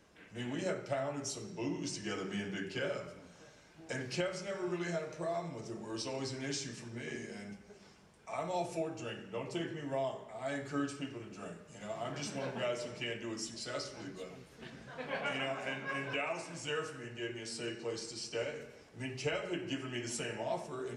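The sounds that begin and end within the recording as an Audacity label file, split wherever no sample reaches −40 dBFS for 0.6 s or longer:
3.890000	7.530000	sound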